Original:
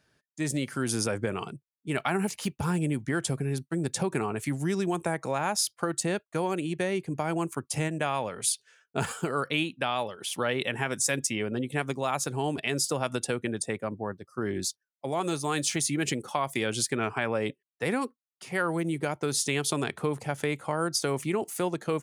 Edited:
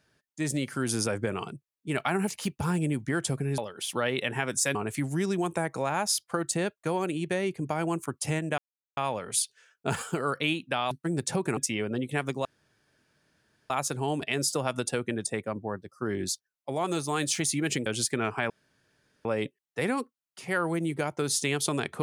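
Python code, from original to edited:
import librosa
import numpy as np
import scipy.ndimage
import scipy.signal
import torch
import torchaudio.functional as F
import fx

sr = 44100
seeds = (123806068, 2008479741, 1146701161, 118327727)

y = fx.edit(x, sr, fx.swap(start_s=3.58, length_s=0.66, other_s=10.01, other_length_s=1.17),
    fx.insert_silence(at_s=8.07, length_s=0.39),
    fx.insert_room_tone(at_s=12.06, length_s=1.25),
    fx.cut(start_s=16.22, length_s=0.43),
    fx.insert_room_tone(at_s=17.29, length_s=0.75), tone=tone)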